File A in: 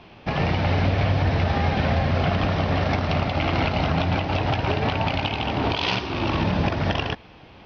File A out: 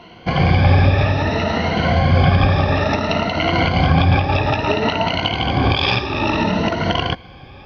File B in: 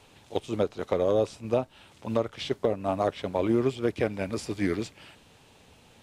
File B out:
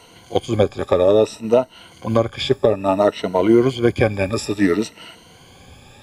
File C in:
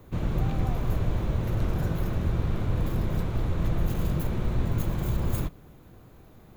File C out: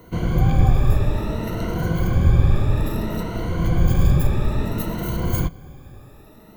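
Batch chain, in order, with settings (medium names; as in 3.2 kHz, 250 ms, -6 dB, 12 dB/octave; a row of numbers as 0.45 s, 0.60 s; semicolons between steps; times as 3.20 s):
drifting ripple filter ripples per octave 1.9, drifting +0.59 Hz, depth 15 dB; peak normalisation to -2 dBFS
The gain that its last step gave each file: +3.5 dB, +8.0 dB, +5.0 dB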